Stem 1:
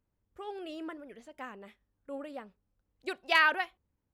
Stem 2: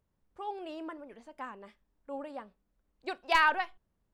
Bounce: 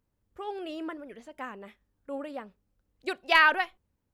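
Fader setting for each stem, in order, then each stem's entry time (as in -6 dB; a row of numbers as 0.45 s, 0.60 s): +2.5 dB, -10.0 dB; 0.00 s, 0.00 s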